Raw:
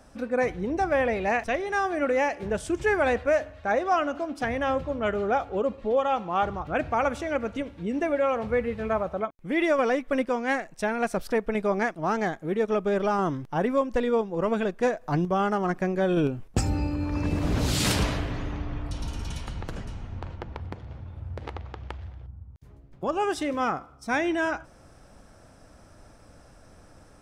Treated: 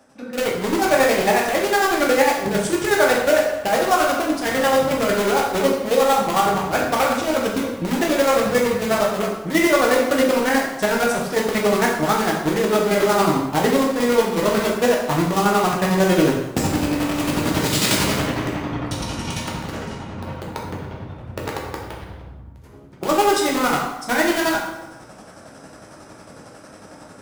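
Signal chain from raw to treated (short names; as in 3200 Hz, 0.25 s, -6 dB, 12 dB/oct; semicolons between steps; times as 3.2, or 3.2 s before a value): HPF 150 Hz 12 dB/oct; AGC gain up to 12.5 dB; in parallel at -3 dB: wrapped overs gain 15.5 dB; on the sum: chopper 11 Hz, depth 60%, duty 40%; plate-style reverb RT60 1 s, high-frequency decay 0.75×, DRR -2 dB; gain -5 dB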